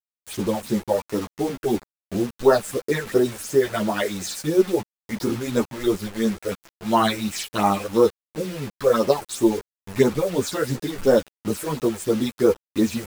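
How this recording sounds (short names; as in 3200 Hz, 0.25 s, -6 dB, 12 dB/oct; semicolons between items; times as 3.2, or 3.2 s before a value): phasing stages 6, 2.9 Hz, lowest notch 230–4000 Hz; a quantiser's noise floor 6-bit, dither none; a shimmering, thickened sound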